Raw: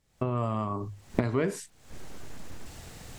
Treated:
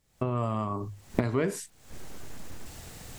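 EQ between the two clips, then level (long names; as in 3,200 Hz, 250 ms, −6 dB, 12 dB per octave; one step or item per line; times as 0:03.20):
high-shelf EQ 10,000 Hz +7.5 dB
0.0 dB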